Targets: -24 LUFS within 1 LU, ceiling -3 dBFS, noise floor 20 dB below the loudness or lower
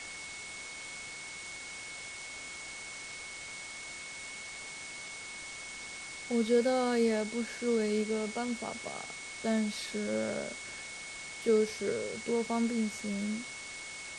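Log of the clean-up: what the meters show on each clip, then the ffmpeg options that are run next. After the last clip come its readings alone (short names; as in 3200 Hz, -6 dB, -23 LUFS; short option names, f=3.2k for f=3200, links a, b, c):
steady tone 2200 Hz; tone level -44 dBFS; noise floor -44 dBFS; noise floor target -55 dBFS; loudness -35.0 LUFS; peak -17.0 dBFS; loudness target -24.0 LUFS
-> -af "bandreject=f=2.2k:w=30"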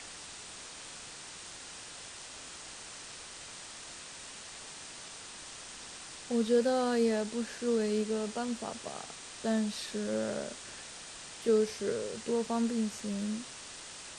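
steady tone none; noise floor -47 dBFS; noise floor target -56 dBFS
-> -af "afftdn=nr=9:nf=-47"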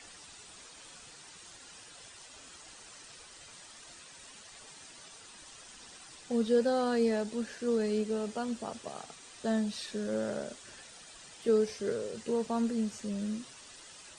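noise floor -53 dBFS; loudness -32.5 LUFS; peak -17.0 dBFS; loudness target -24.0 LUFS
-> -af "volume=8.5dB"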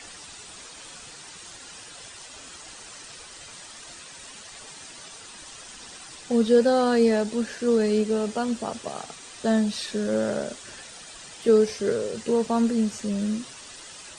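loudness -24.0 LUFS; peak -8.5 dBFS; noise floor -44 dBFS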